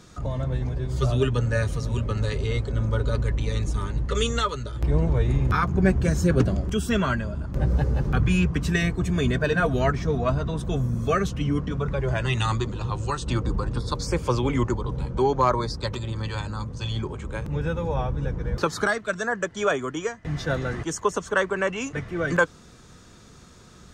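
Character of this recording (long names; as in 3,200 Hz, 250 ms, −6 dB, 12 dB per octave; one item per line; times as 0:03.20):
background noise floor −49 dBFS
spectral slope −6.0 dB per octave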